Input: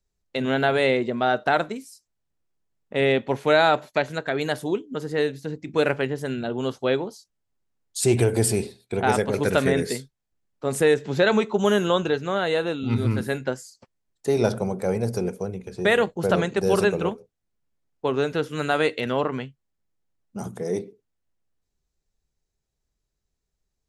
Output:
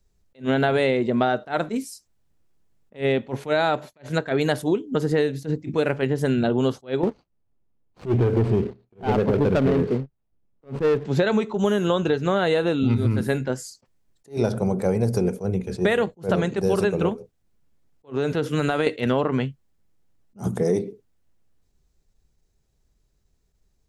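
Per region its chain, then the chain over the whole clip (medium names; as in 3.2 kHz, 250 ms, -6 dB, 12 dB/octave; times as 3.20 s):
7.03–11.05 s: median filter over 25 samples + low-pass 3.3 kHz + waveshaping leveller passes 2
18.10–18.87 s: high-pass 54 Hz + compression 5:1, threshold -26 dBFS
whole clip: bass shelf 470 Hz +6 dB; compression 10:1, threshold -24 dBFS; attacks held to a fixed rise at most 270 dB/s; trim +7 dB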